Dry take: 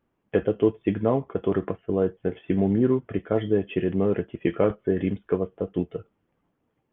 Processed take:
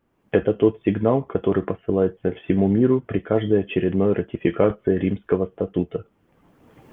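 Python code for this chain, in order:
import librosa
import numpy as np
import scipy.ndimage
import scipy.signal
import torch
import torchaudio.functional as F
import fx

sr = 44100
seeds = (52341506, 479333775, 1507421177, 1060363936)

y = fx.recorder_agc(x, sr, target_db=-17.5, rise_db_per_s=25.0, max_gain_db=30)
y = y * librosa.db_to_amplitude(3.5)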